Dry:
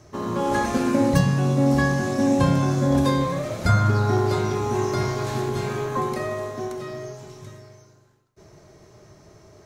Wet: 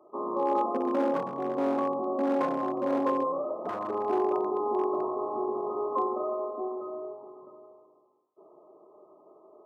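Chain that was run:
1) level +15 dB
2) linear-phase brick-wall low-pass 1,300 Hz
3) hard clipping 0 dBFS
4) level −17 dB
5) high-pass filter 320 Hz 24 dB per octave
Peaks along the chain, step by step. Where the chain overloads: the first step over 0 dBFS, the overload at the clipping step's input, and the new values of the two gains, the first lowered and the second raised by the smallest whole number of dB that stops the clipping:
+8.5, +8.5, 0.0, −17.0, −15.5 dBFS
step 1, 8.5 dB
step 1 +6 dB, step 4 −8 dB

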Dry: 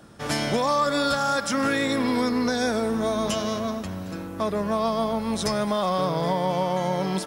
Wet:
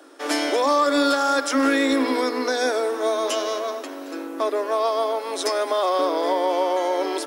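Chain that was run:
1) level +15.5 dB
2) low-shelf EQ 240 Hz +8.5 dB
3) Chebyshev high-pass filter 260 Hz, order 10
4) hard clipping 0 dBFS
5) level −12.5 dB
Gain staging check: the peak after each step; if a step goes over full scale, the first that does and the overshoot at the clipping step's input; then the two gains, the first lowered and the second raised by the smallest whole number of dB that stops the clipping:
+4.0, +5.0, +4.0, 0.0, −12.5 dBFS
step 1, 4.0 dB
step 1 +11.5 dB, step 5 −8.5 dB

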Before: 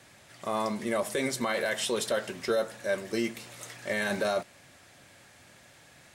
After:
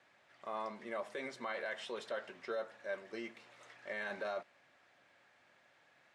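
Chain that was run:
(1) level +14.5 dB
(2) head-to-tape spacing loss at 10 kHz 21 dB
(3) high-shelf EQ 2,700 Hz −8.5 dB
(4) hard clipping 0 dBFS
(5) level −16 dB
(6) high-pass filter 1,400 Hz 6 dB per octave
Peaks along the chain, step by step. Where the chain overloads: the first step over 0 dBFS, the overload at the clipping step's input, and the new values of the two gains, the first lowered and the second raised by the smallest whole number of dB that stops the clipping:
−2.5, −4.0, −4.5, −4.5, −20.5, −28.0 dBFS
no step passes full scale

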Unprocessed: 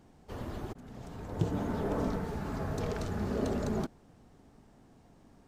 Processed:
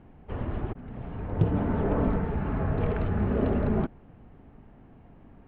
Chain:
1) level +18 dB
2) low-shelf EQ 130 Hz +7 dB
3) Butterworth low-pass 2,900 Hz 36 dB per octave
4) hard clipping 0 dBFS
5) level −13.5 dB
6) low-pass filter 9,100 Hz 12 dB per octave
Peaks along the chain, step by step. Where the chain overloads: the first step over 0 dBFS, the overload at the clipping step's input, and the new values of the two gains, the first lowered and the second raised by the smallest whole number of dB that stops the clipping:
+2.5, +4.0, +4.0, 0.0, −13.5, −13.5 dBFS
step 1, 4.0 dB
step 1 +14 dB, step 5 −9.5 dB

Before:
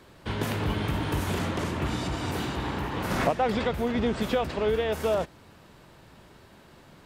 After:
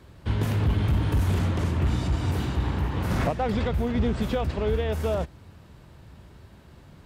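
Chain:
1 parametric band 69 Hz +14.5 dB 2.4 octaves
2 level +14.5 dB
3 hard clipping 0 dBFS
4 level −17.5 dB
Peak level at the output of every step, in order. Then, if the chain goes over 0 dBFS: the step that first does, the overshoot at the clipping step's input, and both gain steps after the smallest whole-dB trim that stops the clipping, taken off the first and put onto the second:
−7.0, +7.5, 0.0, −17.5 dBFS
step 2, 7.5 dB
step 2 +6.5 dB, step 4 −9.5 dB

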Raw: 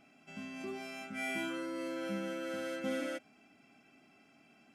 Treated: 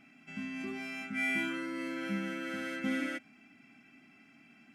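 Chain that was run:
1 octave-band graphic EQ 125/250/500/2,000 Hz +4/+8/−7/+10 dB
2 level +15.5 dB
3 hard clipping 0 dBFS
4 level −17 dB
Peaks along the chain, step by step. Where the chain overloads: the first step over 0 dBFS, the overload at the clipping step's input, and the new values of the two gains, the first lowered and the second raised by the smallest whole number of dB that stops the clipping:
−20.5, −5.0, −5.0, −22.0 dBFS
no step passes full scale

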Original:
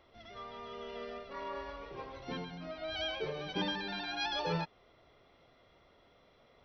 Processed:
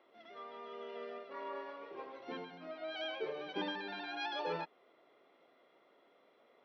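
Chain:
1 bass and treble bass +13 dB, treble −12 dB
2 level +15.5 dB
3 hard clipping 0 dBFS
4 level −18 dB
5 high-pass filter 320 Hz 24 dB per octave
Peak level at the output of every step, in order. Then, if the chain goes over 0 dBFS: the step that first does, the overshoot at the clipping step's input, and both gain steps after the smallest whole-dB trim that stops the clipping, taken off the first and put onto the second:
−17.5, −2.0, −2.0, −20.0, −27.5 dBFS
no step passes full scale

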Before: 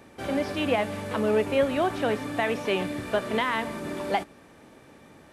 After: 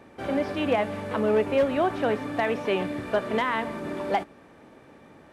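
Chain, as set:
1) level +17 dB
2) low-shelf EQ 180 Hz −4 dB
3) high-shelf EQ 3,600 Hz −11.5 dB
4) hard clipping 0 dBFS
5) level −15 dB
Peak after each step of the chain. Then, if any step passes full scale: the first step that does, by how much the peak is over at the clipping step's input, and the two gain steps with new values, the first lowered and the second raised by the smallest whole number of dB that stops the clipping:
+6.0, +5.5, +4.5, 0.0, −15.0 dBFS
step 1, 4.5 dB
step 1 +12 dB, step 5 −10 dB

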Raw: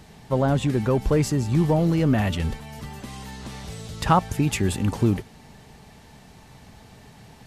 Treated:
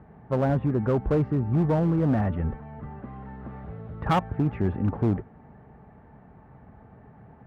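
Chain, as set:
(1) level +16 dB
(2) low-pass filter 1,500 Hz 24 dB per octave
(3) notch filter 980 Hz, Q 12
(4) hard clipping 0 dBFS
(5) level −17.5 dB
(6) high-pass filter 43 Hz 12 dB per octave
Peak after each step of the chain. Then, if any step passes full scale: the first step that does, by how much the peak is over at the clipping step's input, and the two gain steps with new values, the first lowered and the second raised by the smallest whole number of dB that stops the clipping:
+10.0, +10.5, +9.0, 0.0, −17.5, −14.0 dBFS
step 1, 9.0 dB
step 1 +7 dB, step 5 −8.5 dB

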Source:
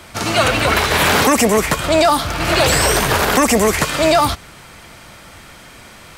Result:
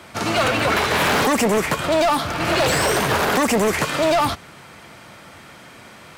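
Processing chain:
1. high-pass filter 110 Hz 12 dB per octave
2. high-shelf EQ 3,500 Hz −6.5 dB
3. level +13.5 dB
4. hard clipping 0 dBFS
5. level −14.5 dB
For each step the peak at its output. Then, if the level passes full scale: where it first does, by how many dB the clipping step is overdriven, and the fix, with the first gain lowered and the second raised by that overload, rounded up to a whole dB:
−3.0, −4.0, +9.5, 0.0, −14.5 dBFS
step 3, 9.5 dB
step 3 +3.5 dB, step 5 −4.5 dB

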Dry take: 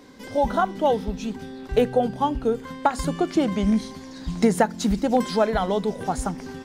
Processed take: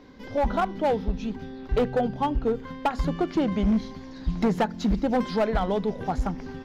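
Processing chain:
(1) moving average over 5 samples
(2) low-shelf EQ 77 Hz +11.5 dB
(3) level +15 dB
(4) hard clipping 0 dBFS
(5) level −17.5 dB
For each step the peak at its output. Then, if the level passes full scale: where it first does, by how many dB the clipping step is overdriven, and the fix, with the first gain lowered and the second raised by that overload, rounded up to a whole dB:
−6.0, −6.0, +9.0, 0.0, −17.5 dBFS
step 3, 9.0 dB
step 3 +6 dB, step 5 −8.5 dB

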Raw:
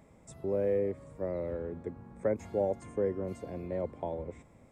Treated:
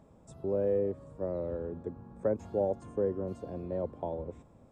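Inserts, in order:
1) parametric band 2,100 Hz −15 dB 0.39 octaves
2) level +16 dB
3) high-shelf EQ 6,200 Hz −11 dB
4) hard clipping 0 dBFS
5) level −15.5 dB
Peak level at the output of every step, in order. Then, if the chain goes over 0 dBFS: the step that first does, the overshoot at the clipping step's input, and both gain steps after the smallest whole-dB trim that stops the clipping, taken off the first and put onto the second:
−18.0, −2.0, −2.0, −2.0, −17.5 dBFS
no step passes full scale

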